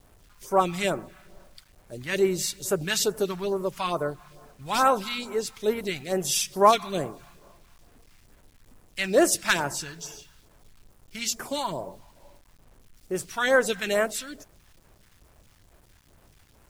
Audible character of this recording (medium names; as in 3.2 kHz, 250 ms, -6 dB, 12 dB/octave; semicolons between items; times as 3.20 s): phasing stages 2, 2.3 Hz, lowest notch 420–3800 Hz; a quantiser's noise floor 10-bit, dither none